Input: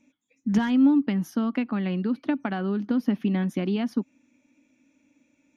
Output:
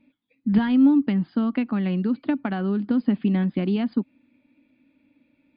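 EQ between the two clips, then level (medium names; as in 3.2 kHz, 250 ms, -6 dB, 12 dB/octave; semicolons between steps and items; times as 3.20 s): brick-wall FIR low-pass 5 kHz; bass shelf 210 Hz +6 dB; 0.0 dB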